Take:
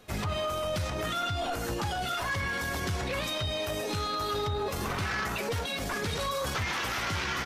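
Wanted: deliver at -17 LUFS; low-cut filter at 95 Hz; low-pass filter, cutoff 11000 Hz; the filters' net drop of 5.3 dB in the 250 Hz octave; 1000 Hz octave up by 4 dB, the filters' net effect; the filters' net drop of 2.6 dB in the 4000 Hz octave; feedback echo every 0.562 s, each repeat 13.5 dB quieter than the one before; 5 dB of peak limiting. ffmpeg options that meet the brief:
-af "highpass=95,lowpass=11k,equalizer=f=250:t=o:g=-8,equalizer=f=1k:t=o:g=6,equalizer=f=4k:t=o:g=-3.5,alimiter=level_in=0.5dB:limit=-24dB:level=0:latency=1,volume=-0.5dB,aecho=1:1:562|1124:0.211|0.0444,volume=15.5dB"

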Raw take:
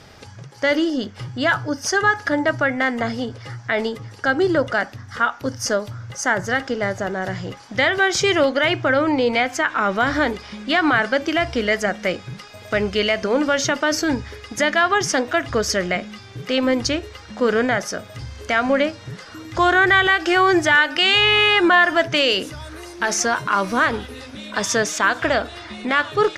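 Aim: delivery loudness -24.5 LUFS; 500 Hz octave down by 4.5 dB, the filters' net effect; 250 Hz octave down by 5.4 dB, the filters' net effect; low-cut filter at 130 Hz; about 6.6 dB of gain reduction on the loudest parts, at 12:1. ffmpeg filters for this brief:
-af "highpass=130,equalizer=f=250:t=o:g=-5,equalizer=f=500:t=o:g=-4.5,acompressor=threshold=-18dB:ratio=12"

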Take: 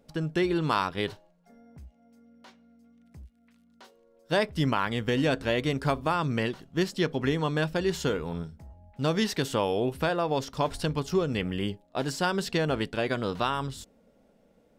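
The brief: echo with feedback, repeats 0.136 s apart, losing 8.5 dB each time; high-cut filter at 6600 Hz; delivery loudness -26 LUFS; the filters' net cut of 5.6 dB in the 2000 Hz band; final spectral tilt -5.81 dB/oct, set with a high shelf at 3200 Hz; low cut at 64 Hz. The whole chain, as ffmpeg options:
-af "highpass=64,lowpass=6.6k,equalizer=f=2k:t=o:g=-5.5,highshelf=f=3.2k:g=-6.5,aecho=1:1:136|272|408|544:0.376|0.143|0.0543|0.0206,volume=3dB"

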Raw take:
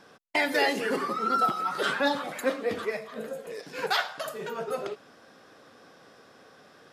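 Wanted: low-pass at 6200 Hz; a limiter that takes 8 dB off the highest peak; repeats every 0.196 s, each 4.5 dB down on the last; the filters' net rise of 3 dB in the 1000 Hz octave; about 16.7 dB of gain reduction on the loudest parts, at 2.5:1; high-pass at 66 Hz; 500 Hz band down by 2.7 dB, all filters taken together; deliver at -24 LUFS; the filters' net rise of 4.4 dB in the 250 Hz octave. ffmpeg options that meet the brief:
-af "highpass=66,lowpass=6.2k,equalizer=f=250:t=o:g=6.5,equalizer=f=500:t=o:g=-6,equalizer=f=1k:t=o:g=5.5,acompressor=threshold=-45dB:ratio=2.5,alimiter=level_in=9dB:limit=-24dB:level=0:latency=1,volume=-9dB,aecho=1:1:196|392|588|784|980|1176|1372|1568|1764:0.596|0.357|0.214|0.129|0.0772|0.0463|0.0278|0.0167|0.01,volume=18dB"

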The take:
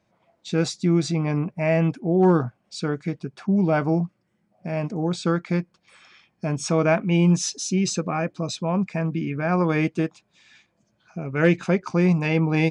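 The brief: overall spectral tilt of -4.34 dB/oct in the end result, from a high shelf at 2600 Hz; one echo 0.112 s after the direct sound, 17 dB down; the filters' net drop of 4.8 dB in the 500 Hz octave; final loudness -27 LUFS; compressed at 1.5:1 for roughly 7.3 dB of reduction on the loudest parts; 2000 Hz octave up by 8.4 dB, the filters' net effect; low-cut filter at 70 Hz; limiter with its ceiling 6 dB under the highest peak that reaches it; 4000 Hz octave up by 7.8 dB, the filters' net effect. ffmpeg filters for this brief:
-af "highpass=70,equalizer=f=500:t=o:g=-7.5,equalizer=f=2k:t=o:g=8,highshelf=f=2.6k:g=4,equalizer=f=4k:t=o:g=4.5,acompressor=threshold=-34dB:ratio=1.5,alimiter=limit=-18dB:level=0:latency=1,aecho=1:1:112:0.141,volume=2.5dB"

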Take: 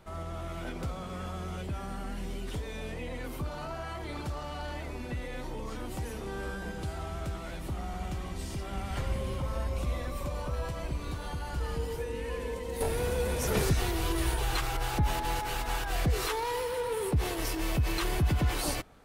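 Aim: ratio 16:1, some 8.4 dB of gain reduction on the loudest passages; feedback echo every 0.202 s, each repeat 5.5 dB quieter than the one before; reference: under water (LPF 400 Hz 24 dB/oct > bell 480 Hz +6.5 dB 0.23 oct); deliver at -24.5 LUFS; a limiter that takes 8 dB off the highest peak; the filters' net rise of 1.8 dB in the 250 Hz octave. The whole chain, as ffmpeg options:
-af "equalizer=f=250:t=o:g=3,acompressor=threshold=-30dB:ratio=16,alimiter=level_in=5.5dB:limit=-24dB:level=0:latency=1,volume=-5.5dB,lowpass=f=400:w=0.5412,lowpass=f=400:w=1.3066,equalizer=f=480:t=o:w=0.23:g=6.5,aecho=1:1:202|404|606|808|1010|1212|1414:0.531|0.281|0.149|0.079|0.0419|0.0222|0.0118,volume=15dB"

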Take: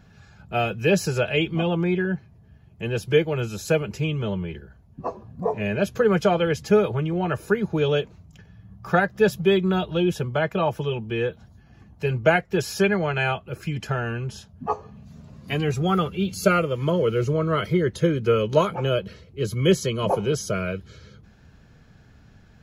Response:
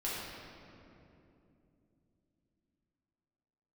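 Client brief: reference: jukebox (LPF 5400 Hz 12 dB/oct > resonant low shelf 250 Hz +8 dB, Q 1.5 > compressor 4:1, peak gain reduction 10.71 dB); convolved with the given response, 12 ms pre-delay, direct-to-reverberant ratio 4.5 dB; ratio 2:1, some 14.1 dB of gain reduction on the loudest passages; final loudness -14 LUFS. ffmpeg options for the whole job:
-filter_complex "[0:a]acompressor=threshold=-40dB:ratio=2,asplit=2[a][b];[1:a]atrim=start_sample=2205,adelay=12[c];[b][c]afir=irnorm=-1:irlink=0,volume=-9dB[d];[a][d]amix=inputs=2:normalize=0,lowpass=5.4k,lowshelf=f=250:t=q:w=1.5:g=8,acompressor=threshold=-30dB:ratio=4,volume=20dB"

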